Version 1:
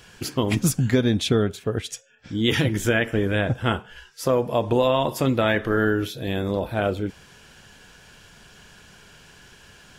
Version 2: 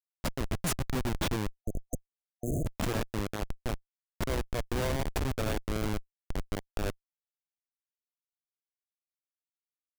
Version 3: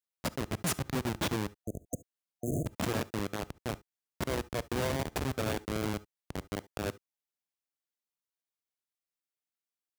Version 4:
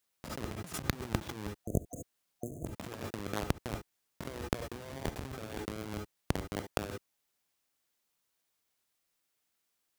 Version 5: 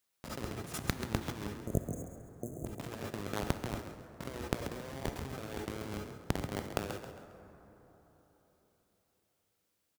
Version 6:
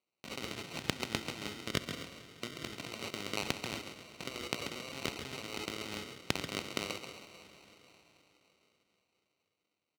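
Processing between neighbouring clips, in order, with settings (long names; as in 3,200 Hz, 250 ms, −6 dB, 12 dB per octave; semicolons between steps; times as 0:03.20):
bass and treble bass −1 dB, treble +11 dB; comparator with hysteresis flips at −16 dBFS; time-frequency box erased 0:01.64–0:02.67, 730–6,200 Hz; level −5 dB
high-pass filter 93 Hz 12 dB per octave; on a send at −19 dB: convolution reverb, pre-delay 3 ms
compressor whose output falls as the input rises −40 dBFS, ratio −0.5; level +4.5 dB
on a send: echo with shifted repeats 135 ms, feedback 36%, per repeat +38 Hz, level −9 dB; on the sum: dense smooth reverb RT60 4.1 s, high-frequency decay 0.4×, DRR 11 dB; level −1 dB
adaptive Wiener filter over 9 samples; decimation without filtering 26×; meter weighting curve D; level −1.5 dB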